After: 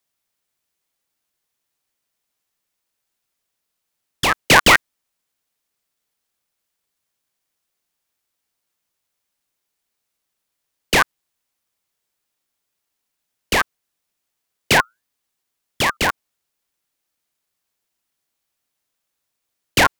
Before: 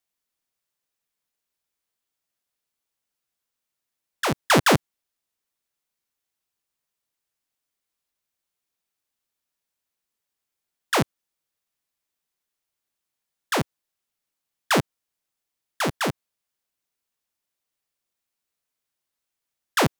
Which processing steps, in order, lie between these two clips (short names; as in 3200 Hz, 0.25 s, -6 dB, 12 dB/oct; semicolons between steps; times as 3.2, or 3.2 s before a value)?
14.73–15.97 frequency shift +57 Hz; ring modulator with a swept carrier 1900 Hz, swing 35%, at 0.78 Hz; gain +9 dB